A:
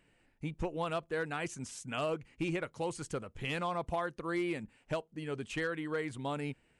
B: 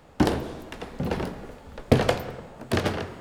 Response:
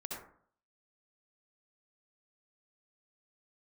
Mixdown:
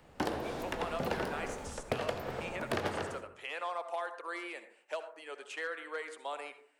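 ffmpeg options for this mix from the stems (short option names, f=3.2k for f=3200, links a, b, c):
-filter_complex "[0:a]highpass=f=510:w=0.5412,highpass=f=510:w=1.3066,volume=-2.5dB,asplit=2[a][b];[b]volume=-6dB[c];[1:a]dynaudnorm=f=140:g=3:m=11dB,volume=-8.5dB,asplit=2[d][e];[e]volume=-9dB[f];[2:a]atrim=start_sample=2205[g];[c][f]amix=inputs=2:normalize=0[h];[h][g]afir=irnorm=-1:irlink=0[i];[a][d][i]amix=inputs=3:normalize=0,acrossover=split=390|2400[j][k][l];[j]acompressor=threshold=-43dB:ratio=4[m];[k]acompressor=threshold=-33dB:ratio=4[n];[l]acompressor=threshold=-47dB:ratio=4[o];[m][n][o]amix=inputs=3:normalize=0"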